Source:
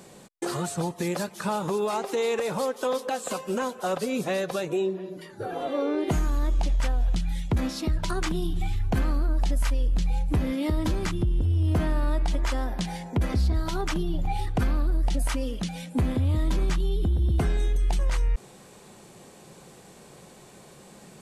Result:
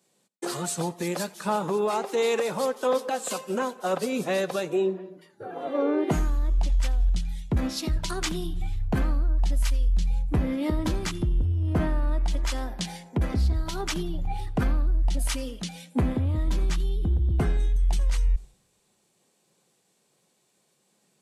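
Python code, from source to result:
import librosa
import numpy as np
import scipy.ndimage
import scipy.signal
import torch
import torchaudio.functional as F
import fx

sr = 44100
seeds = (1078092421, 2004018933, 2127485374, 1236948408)

y = fx.echo_feedback(x, sr, ms=88, feedback_pct=32, wet_db=-21)
y = fx.band_widen(y, sr, depth_pct=100)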